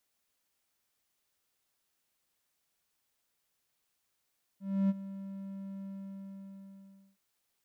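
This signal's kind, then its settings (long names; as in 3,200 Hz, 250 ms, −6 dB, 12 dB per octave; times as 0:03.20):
note with an ADSR envelope triangle 195 Hz, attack 295 ms, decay 33 ms, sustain −16 dB, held 1.25 s, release 1,320 ms −21.5 dBFS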